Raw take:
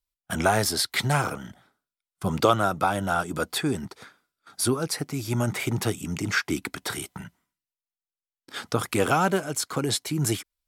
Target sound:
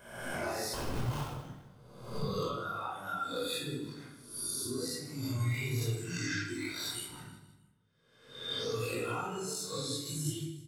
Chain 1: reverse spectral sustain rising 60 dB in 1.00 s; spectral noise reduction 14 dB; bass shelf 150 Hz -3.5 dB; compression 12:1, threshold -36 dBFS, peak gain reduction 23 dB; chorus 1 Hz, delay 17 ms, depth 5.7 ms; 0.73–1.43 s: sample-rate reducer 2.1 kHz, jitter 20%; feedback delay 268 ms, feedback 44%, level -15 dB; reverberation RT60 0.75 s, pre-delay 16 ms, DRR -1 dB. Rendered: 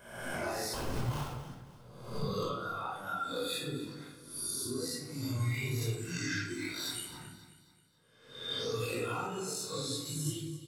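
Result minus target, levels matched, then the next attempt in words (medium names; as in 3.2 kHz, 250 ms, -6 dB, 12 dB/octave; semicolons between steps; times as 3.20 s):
echo 110 ms late
reverse spectral sustain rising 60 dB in 1.00 s; spectral noise reduction 14 dB; bass shelf 150 Hz -3.5 dB; compression 12:1, threshold -36 dBFS, peak gain reduction 23 dB; chorus 1 Hz, delay 17 ms, depth 5.7 ms; 0.73–1.43 s: sample-rate reducer 2.1 kHz, jitter 20%; feedback delay 158 ms, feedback 44%, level -15 dB; reverberation RT60 0.75 s, pre-delay 16 ms, DRR -1 dB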